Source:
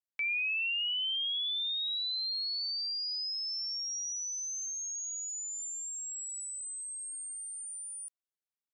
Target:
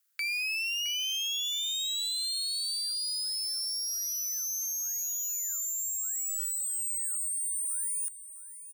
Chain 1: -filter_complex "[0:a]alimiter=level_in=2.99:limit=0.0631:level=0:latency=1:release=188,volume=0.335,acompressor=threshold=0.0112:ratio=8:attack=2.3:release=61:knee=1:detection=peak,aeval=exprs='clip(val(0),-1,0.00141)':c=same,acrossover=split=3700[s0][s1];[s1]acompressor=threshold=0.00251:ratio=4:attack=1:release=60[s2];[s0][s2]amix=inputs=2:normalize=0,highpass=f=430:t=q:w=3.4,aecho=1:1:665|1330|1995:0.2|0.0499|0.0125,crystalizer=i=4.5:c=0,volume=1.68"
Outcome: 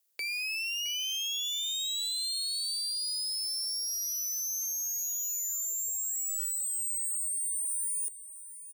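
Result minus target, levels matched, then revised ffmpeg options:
1 kHz band -3.0 dB
-filter_complex "[0:a]alimiter=level_in=2.99:limit=0.0631:level=0:latency=1:release=188,volume=0.335,acompressor=threshold=0.0112:ratio=8:attack=2.3:release=61:knee=1:detection=peak,aeval=exprs='clip(val(0),-1,0.00141)':c=same,acrossover=split=3700[s0][s1];[s1]acompressor=threshold=0.00251:ratio=4:attack=1:release=60[s2];[s0][s2]amix=inputs=2:normalize=0,highpass=f=1400:t=q:w=3.4,aecho=1:1:665|1330|1995:0.2|0.0499|0.0125,crystalizer=i=4.5:c=0,volume=1.68"

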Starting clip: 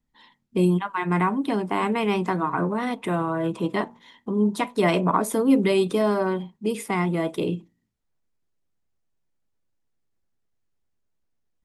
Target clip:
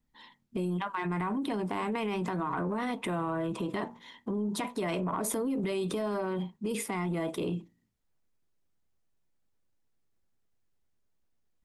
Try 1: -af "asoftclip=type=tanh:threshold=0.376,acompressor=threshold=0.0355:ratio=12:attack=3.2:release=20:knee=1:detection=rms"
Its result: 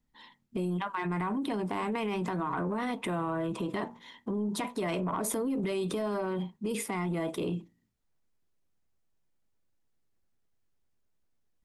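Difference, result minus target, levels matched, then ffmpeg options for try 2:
saturation: distortion +12 dB
-af "asoftclip=type=tanh:threshold=0.794,acompressor=threshold=0.0355:ratio=12:attack=3.2:release=20:knee=1:detection=rms"

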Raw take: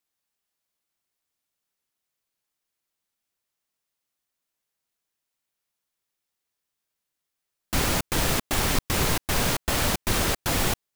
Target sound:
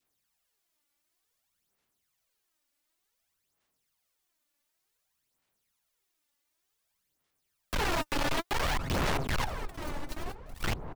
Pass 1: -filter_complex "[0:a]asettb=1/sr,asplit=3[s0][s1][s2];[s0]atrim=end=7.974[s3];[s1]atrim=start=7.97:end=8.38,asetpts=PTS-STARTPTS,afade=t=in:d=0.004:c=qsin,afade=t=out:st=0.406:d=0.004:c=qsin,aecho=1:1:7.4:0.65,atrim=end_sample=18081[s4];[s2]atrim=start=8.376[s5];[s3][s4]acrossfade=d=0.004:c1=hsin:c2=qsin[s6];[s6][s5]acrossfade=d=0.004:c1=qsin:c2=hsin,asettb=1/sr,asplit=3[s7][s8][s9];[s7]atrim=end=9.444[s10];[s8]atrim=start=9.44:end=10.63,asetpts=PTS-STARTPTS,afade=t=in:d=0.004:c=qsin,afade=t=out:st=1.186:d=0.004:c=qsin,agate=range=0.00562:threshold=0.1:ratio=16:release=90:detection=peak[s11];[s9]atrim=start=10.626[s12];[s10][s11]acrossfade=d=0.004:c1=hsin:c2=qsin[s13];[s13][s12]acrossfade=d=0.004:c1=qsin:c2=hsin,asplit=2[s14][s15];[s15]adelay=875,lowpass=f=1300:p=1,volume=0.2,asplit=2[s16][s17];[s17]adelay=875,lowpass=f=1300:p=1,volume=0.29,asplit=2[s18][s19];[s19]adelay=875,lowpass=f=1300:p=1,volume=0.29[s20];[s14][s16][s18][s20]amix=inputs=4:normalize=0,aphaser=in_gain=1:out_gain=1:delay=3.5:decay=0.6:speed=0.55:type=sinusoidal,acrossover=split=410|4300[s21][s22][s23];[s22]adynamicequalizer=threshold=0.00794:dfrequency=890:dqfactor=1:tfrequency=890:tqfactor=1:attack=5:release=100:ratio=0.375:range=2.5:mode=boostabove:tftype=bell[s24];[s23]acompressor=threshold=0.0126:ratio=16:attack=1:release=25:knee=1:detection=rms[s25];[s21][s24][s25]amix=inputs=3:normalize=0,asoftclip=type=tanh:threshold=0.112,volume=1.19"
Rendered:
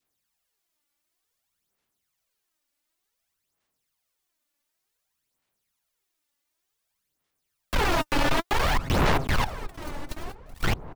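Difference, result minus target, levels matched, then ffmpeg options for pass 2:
saturation: distortion -6 dB
-filter_complex "[0:a]asettb=1/sr,asplit=3[s0][s1][s2];[s0]atrim=end=7.974[s3];[s1]atrim=start=7.97:end=8.38,asetpts=PTS-STARTPTS,afade=t=in:d=0.004:c=qsin,afade=t=out:st=0.406:d=0.004:c=qsin,aecho=1:1:7.4:0.65,atrim=end_sample=18081[s4];[s2]atrim=start=8.376[s5];[s3][s4]acrossfade=d=0.004:c1=hsin:c2=qsin[s6];[s6][s5]acrossfade=d=0.004:c1=qsin:c2=hsin,asettb=1/sr,asplit=3[s7][s8][s9];[s7]atrim=end=9.444[s10];[s8]atrim=start=9.44:end=10.63,asetpts=PTS-STARTPTS,afade=t=in:d=0.004:c=qsin,afade=t=out:st=1.186:d=0.004:c=qsin,agate=range=0.00562:threshold=0.1:ratio=16:release=90:detection=peak[s11];[s9]atrim=start=10.626[s12];[s10][s11]acrossfade=d=0.004:c1=hsin:c2=qsin[s13];[s13][s12]acrossfade=d=0.004:c1=qsin:c2=hsin,asplit=2[s14][s15];[s15]adelay=875,lowpass=f=1300:p=1,volume=0.2,asplit=2[s16][s17];[s17]adelay=875,lowpass=f=1300:p=1,volume=0.29,asplit=2[s18][s19];[s19]adelay=875,lowpass=f=1300:p=1,volume=0.29[s20];[s14][s16][s18][s20]amix=inputs=4:normalize=0,aphaser=in_gain=1:out_gain=1:delay=3.5:decay=0.6:speed=0.55:type=sinusoidal,acrossover=split=410|4300[s21][s22][s23];[s22]adynamicequalizer=threshold=0.00794:dfrequency=890:dqfactor=1:tfrequency=890:tqfactor=1:attack=5:release=100:ratio=0.375:range=2.5:mode=boostabove:tftype=bell[s24];[s23]acompressor=threshold=0.0126:ratio=16:attack=1:release=25:knee=1:detection=rms[s25];[s21][s24][s25]amix=inputs=3:normalize=0,asoftclip=type=tanh:threshold=0.0376,volume=1.19"

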